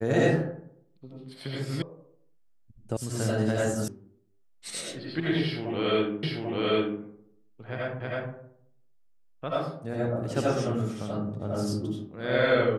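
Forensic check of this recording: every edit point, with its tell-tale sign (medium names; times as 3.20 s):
1.82 s: sound stops dead
2.97 s: sound stops dead
3.88 s: sound stops dead
6.23 s: repeat of the last 0.79 s
8.00 s: repeat of the last 0.32 s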